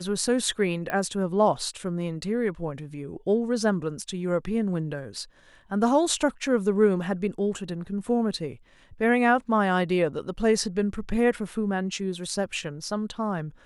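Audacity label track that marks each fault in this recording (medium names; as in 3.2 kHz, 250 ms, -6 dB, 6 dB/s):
0.900000	0.900000	pop -17 dBFS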